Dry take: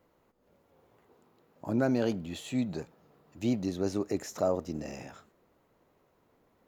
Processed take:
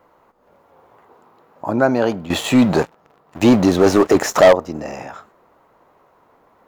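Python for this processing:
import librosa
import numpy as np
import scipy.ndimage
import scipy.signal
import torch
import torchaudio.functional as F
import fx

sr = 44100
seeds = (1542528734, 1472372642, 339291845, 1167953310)

y = fx.peak_eq(x, sr, hz=1000.0, db=13.0, octaves=2.0)
y = fx.leveller(y, sr, passes=3, at=(2.3, 4.53))
y = y * librosa.db_to_amplitude(6.0)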